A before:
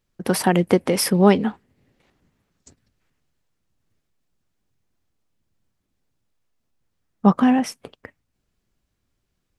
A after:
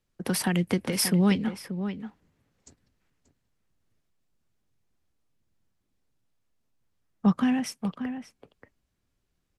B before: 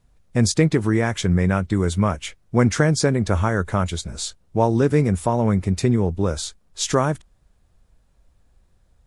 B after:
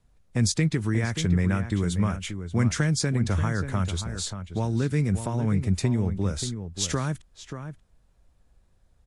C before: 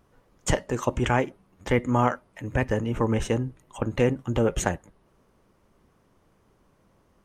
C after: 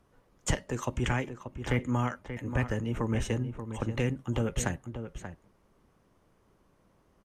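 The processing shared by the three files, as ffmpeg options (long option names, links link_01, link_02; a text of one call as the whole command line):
ffmpeg -i in.wav -filter_complex "[0:a]acrossover=split=250|1500|3400[link_01][link_02][link_03][link_04];[link_02]acompressor=threshold=-30dB:ratio=6[link_05];[link_01][link_05][link_03][link_04]amix=inputs=4:normalize=0,asplit=2[link_06][link_07];[link_07]adelay=583.1,volume=-9dB,highshelf=frequency=4000:gain=-13.1[link_08];[link_06][link_08]amix=inputs=2:normalize=0,aresample=32000,aresample=44100,volume=-3.5dB" out.wav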